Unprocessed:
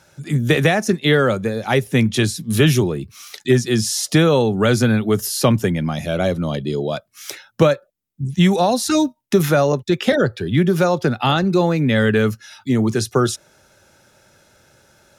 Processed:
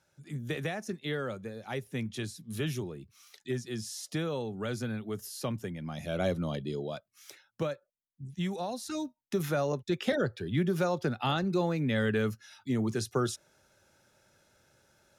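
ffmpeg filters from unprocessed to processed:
-af "volume=0.668,afade=t=in:st=5.79:d=0.5:silence=0.354813,afade=t=out:st=6.29:d=1:silence=0.354813,afade=t=in:st=8.96:d=0.95:silence=0.473151"

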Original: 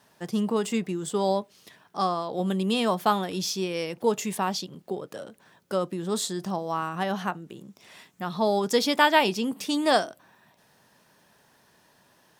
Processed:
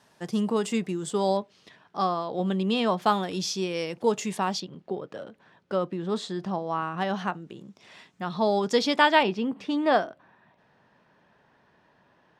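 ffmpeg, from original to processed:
-af "asetnsamples=n=441:p=0,asendcmd='1.37 lowpass f 4500;3.02 lowpass f 7800;4.6 lowpass f 3400;6.98 lowpass f 5600;9.23 lowpass f 2400',lowpass=9700"

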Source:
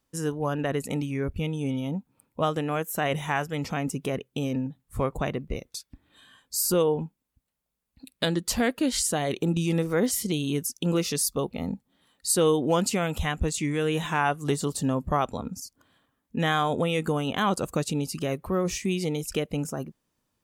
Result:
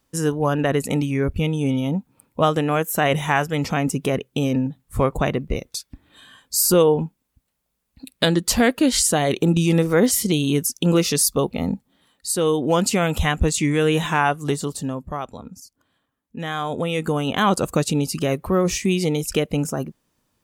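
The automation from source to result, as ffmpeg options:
-af "volume=20,afade=t=out:st=11.72:d=0.61:silence=0.421697,afade=t=in:st=12.33:d=0.81:silence=0.421697,afade=t=out:st=13.9:d=1.16:silence=0.266073,afade=t=in:st=16.46:d=1.09:silence=0.281838"

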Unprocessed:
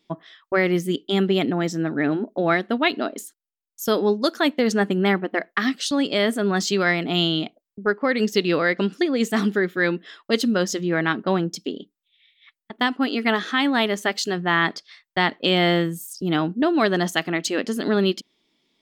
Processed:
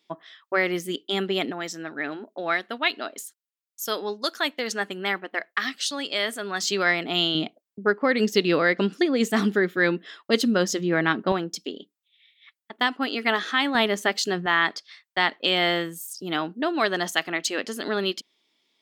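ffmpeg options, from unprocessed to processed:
-af "asetnsamples=n=441:p=0,asendcmd='1.52 highpass f 1300;6.63 highpass f 510;7.35 highpass f 130;11.32 highpass f 510;13.75 highpass f 180;14.46 highpass f 680',highpass=f=600:p=1"

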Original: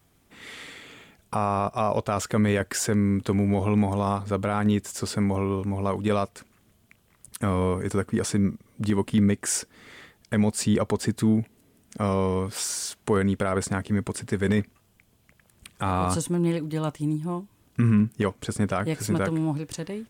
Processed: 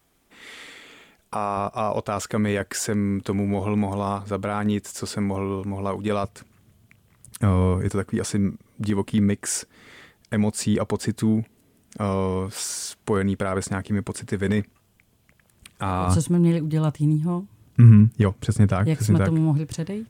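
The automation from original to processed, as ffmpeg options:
-af "asetnsamples=n=441:p=0,asendcmd='1.57 equalizer g -2;6.24 equalizer g 9;7.88 equalizer g 1;16.08 equalizer g 12',equalizer=f=110:t=o:w=1.5:g=-9"

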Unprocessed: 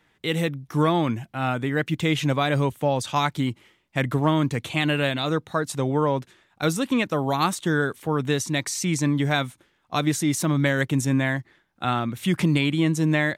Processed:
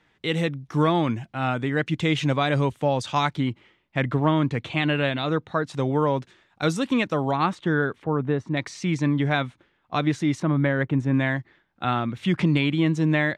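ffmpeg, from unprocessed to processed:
-af "asetnsamples=n=441:p=0,asendcmd='3.36 lowpass f 3600;5.74 lowpass f 6300;7.31 lowpass f 2600;8.04 lowpass f 1300;8.57 lowpass f 3300;10.4 lowpass f 1800;11.14 lowpass f 4000',lowpass=6300"

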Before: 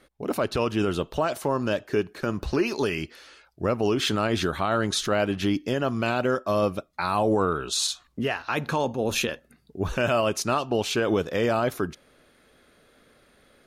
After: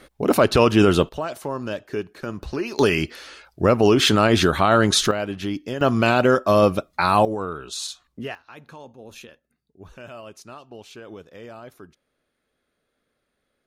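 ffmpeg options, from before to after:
-af "asetnsamples=n=441:p=0,asendcmd='1.09 volume volume -3dB;2.79 volume volume 8dB;5.11 volume volume -2.5dB;5.81 volume volume 7.5dB;7.25 volume volume -5dB;8.35 volume volume -16.5dB',volume=2.99"

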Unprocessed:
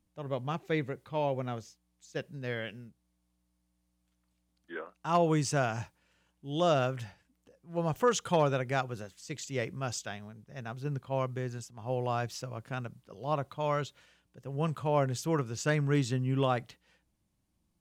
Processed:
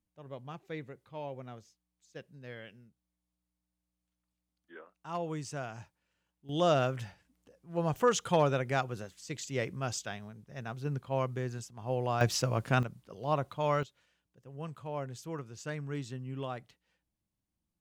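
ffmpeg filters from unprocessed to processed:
-af "asetnsamples=n=441:p=0,asendcmd='6.49 volume volume 0dB;12.21 volume volume 9.5dB;12.83 volume volume 1dB;13.83 volume volume -10dB',volume=0.316"

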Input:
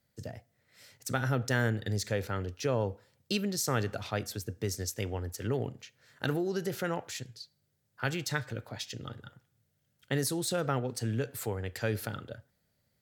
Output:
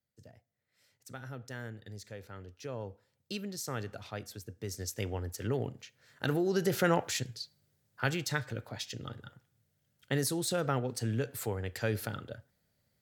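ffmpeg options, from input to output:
-af "volume=2.11,afade=t=in:st=2.2:d=1.18:silence=0.473151,afade=t=in:st=4.6:d=0.42:silence=0.473151,afade=t=in:st=6.24:d=0.7:silence=0.421697,afade=t=out:st=6.94:d=1.34:silence=0.446684"

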